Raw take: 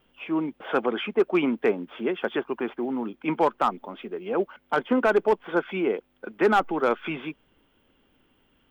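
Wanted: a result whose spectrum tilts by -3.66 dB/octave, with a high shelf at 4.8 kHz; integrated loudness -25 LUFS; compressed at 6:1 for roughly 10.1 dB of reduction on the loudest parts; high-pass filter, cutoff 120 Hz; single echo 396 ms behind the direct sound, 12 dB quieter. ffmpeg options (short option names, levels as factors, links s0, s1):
-af "highpass=120,highshelf=f=4800:g=-3,acompressor=threshold=0.0447:ratio=6,aecho=1:1:396:0.251,volume=2.37"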